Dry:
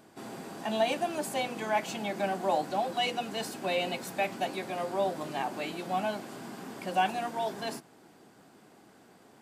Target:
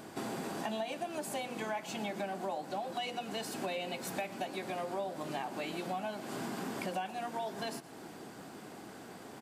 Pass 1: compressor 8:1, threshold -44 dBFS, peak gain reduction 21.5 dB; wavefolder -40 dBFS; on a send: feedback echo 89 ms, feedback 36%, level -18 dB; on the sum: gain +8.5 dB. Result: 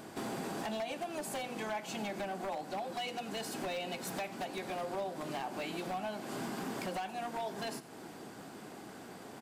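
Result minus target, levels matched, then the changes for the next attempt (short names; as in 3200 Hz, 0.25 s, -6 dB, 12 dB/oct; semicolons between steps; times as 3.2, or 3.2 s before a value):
wavefolder: distortion +29 dB; echo 30 ms early
change: wavefolder -34 dBFS; change: feedback echo 0.119 s, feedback 36%, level -18 dB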